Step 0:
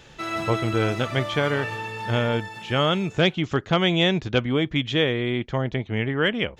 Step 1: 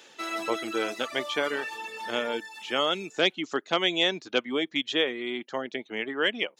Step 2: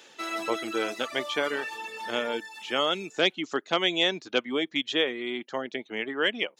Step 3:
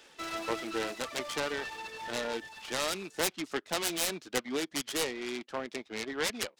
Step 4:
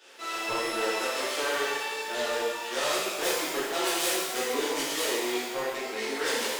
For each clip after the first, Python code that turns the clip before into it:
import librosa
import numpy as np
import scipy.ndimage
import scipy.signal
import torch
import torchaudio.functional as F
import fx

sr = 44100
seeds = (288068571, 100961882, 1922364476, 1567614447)

y1 = fx.high_shelf(x, sr, hz=3500.0, db=7.5)
y1 = fx.dereverb_blind(y1, sr, rt60_s=0.67)
y1 = scipy.signal.sosfilt(scipy.signal.butter(4, 260.0, 'highpass', fs=sr, output='sos'), y1)
y1 = y1 * librosa.db_to_amplitude(-4.0)
y2 = y1
y3 = fx.self_delay(y2, sr, depth_ms=0.4)
y3 = fx.noise_mod_delay(y3, sr, seeds[0], noise_hz=1300.0, depth_ms=0.031)
y3 = y3 * librosa.db_to_amplitude(-4.0)
y4 = scipy.signal.sosfilt(scipy.signal.cheby1(2, 1.0, 400.0, 'highpass', fs=sr, output='sos'), y3)
y4 = 10.0 ** (-26.0 / 20.0) * np.tanh(y4 / 10.0 ** (-26.0 / 20.0))
y4 = fx.rev_shimmer(y4, sr, seeds[1], rt60_s=1.3, semitones=12, shimmer_db=-8, drr_db=-11.0)
y4 = y4 * librosa.db_to_amplitude(-3.5)